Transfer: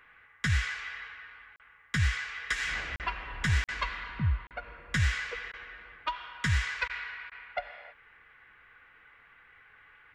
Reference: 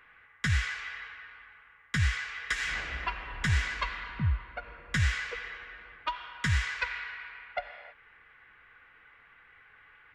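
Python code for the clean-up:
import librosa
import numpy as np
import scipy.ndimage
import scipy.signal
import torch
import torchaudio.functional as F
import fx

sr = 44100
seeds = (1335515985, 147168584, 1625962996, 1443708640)

y = fx.fix_declip(x, sr, threshold_db=-18.5)
y = fx.fix_interpolate(y, sr, at_s=(1.56, 2.96, 3.64, 4.47), length_ms=38.0)
y = fx.fix_interpolate(y, sr, at_s=(3.67, 5.52, 6.88, 7.3), length_ms=14.0)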